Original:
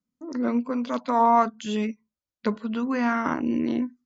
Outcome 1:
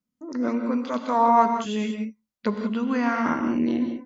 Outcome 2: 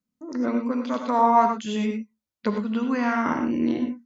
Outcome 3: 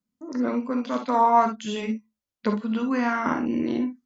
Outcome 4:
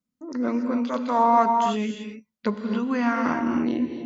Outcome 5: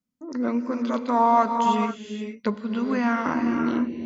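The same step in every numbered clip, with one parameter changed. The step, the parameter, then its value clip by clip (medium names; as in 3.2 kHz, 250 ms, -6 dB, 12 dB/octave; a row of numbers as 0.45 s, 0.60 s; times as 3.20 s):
gated-style reverb, gate: 210 ms, 130 ms, 80 ms, 310 ms, 500 ms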